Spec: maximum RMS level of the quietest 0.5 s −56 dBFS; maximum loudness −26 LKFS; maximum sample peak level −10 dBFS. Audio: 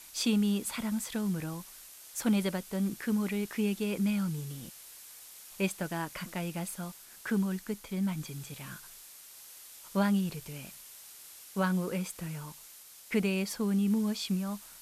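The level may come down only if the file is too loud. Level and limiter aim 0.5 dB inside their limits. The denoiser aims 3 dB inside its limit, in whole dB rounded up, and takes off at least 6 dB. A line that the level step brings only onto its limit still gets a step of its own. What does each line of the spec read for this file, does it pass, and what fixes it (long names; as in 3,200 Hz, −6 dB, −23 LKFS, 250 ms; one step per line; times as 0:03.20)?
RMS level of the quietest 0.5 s −52 dBFS: out of spec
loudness −33.0 LKFS: in spec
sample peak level −17.5 dBFS: in spec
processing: broadband denoise 7 dB, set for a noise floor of −52 dBFS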